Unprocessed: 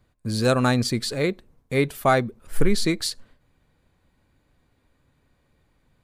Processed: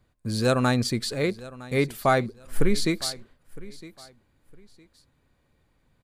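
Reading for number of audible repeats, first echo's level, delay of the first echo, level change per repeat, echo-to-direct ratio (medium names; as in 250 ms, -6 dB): 2, -19.0 dB, 960 ms, -12.0 dB, -19.0 dB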